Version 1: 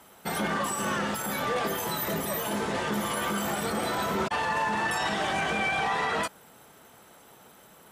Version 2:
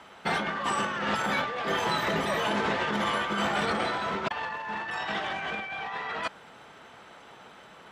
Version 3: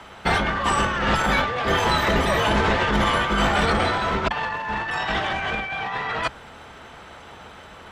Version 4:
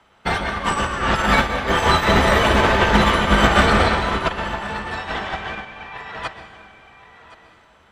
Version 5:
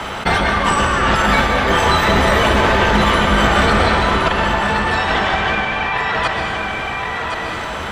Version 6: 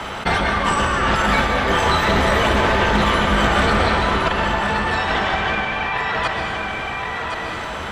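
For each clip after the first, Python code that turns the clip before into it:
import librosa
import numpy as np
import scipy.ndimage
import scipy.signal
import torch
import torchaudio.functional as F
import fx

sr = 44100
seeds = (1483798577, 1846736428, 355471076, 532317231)

y1 = scipy.signal.sosfilt(scipy.signal.butter(2, 3400.0, 'lowpass', fs=sr, output='sos'), x)
y1 = fx.tilt_shelf(y1, sr, db=-4.0, hz=780.0)
y1 = fx.over_compress(y1, sr, threshold_db=-31.0, ratio=-0.5)
y1 = y1 * 10.0 ** (2.0 / 20.0)
y2 = fx.octave_divider(y1, sr, octaves=2, level_db=1.0)
y2 = y2 * 10.0 ** (7.0 / 20.0)
y3 = y2 + 10.0 ** (-7.5 / 20.0) * np.pad(y2, (int(1067 * sr / 1000.0), 0))[:len(y2)]
y3 = fx.rev_plate(y3, sr, seeds[0], rt60_s=1.6, hf_ratio=0.8, predelay_ms=110, drr_db=3.0)
y3 = fx.upward_expand(y3, sr, threshold_db=-28.0, expansion=2.5)
y3 = y3 * 10.0 ** (5.0 / 20.0)
y4 = fx.env_flatten(y3, sr, amount_pct=70)
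y4 = y4 * 10.0 ** (-1.0 / 20.0)
y5 = fx.quant_dither(y4, sr, seeds[1], bits=12, dither='triangular')
y5 = fx.doppler_dist(y5, sr, depth_ms=0.13)
y5 = y5 * 10.0 ** (-3.0 / 20.0)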